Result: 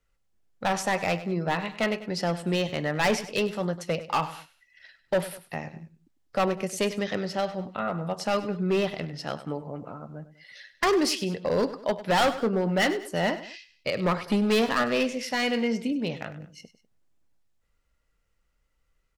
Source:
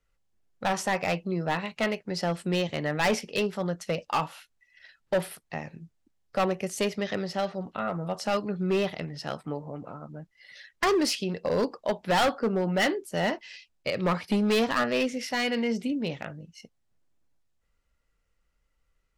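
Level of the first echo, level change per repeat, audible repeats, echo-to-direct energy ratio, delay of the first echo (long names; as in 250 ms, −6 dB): −14.5 dB, −7.5 dB, 2, −14.0 dB, 99 ms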